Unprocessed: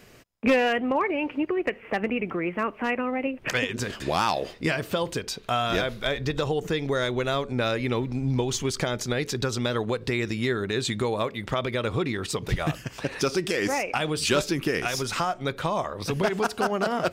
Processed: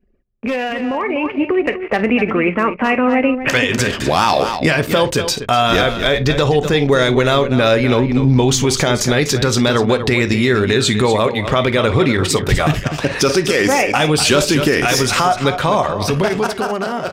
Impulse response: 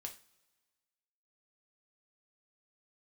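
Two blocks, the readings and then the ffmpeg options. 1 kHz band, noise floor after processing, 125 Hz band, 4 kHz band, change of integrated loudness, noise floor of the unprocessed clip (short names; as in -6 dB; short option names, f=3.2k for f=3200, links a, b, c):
+11.0 dB, -27 dBFS, +12.5 dB, +12.0 dB, +11.5 dB, -47 dBFS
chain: -filter_complex "[0:a]aecho=1:1:52|247:0.112|0.266,asplit=2[a][b];[1:a]atrim=start_sample=2205,atrim=end_sample=3087[c];[b][c]afir=irnorm=-1:irlink=0,volume=0.5dB[d];[a][d]amix=inputs=2:normalize=0,alimiter=limit=-14dB:level=0:latency=1:release=26,anlmdn=1,dynaudnorm=f=220:g=13:m=10dB"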